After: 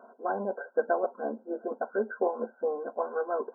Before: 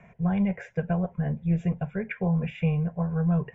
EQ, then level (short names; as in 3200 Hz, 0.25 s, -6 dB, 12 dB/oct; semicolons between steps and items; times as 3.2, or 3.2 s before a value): brick-wall FIR band-pass 230–1600 Hz; +6.0 dB